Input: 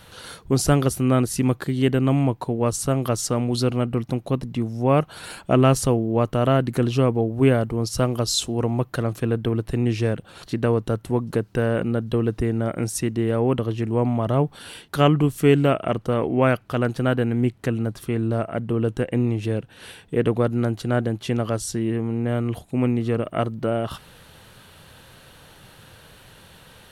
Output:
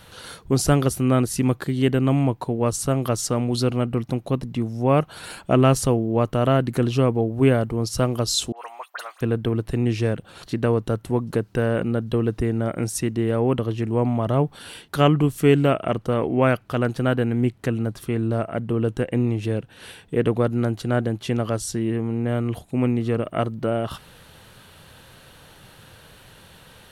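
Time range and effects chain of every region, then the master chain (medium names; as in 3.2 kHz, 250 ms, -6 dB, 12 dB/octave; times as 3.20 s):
8.52–9.21 s: high-pass 820 Hz 24 dB/octave + phase dispersion highs, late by 57 ms, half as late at 2.4 kHz
whole clip: none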